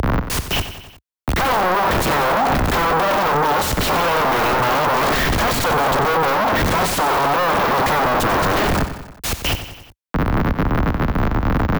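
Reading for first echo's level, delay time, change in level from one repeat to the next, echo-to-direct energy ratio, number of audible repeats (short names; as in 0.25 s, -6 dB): -11.0 dB, 92 ms, -4.5 dB, -9.5 dB, 4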